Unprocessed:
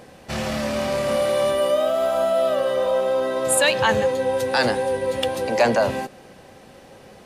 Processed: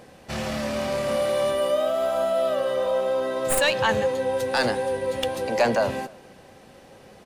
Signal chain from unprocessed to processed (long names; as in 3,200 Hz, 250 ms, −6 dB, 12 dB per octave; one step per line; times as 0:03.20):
stylus tracing distortion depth 0.046 ms
far-end echo of a speakerphone 290 ms, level −25 dB
level −3 dB